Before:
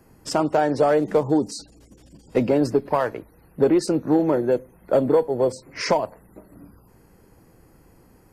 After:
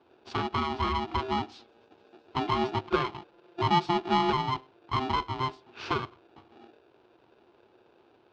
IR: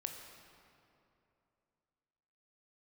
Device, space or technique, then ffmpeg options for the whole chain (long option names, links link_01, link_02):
ring modulator pedal into a guitar cabinet: -filter_complex "[0:a]asettb=1/sr,asplit=3[link_01][link_02][link_03];[link_01]atrim=end=2.484[link_04];[link_02]atrim=start=2.48:end=4.49,asetpts=PTS-STARTPTS,afade=type=in:duration=0.004:curve=qsin,afade=type=out:start_time=2.006:duration=0.004:curve=qsin,aecho=1:1:5.7:0.99,atrim=end_sample=88641[link_05];[link_03]atrim=start=4.486[link_06];[link_04][link_05]acrossfade=duration=0.004:curve1=hsin:curve2=qsin[link_07];[link_07][link_06]acrossfade=duration=0.004:curve1=qsin:curve2=hsin,aeval=exprs='val(0)*sgn(sin(2*PI*520*n/s))':channel_layout=same,highpass=89,equalizer=frequency=100:width_type=q:width=4:gain=3,equalizer=frequency=180:width_type=q:width=4:gain=-9,equalizer=frequency=360:width_type=q:width=4:gain=9,equalizer=frequency=590:width_type=q:width=4:gain=-4,equalizer=frequency=1900:width_type=q:width=4:gain=-9,lowpass=frequency=3900:width=0.5412,lowpass=frequency=3900:width=1.3066,volume=-8.5dB"